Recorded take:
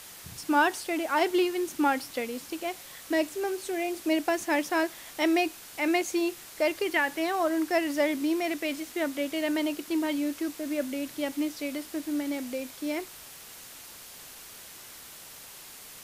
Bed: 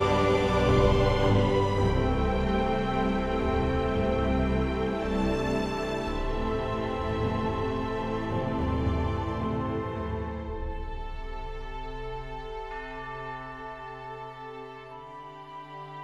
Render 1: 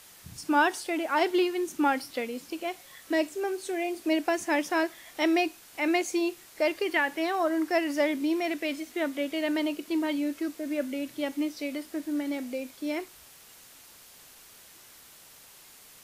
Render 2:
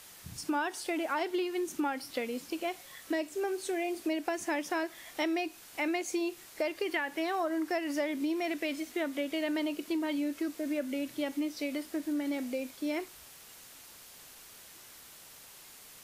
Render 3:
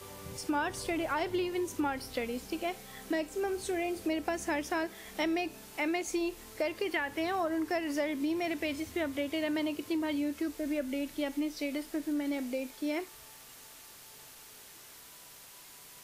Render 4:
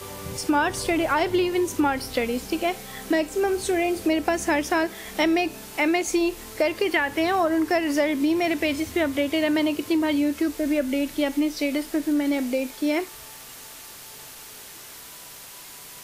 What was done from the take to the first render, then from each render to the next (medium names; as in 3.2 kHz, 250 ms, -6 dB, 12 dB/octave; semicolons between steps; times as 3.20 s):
noise print and reduce 6 dB
compression, threshold -29 dBFS, peak gain reduction 10.5 dB
add bed -25 dB
trim +10 dB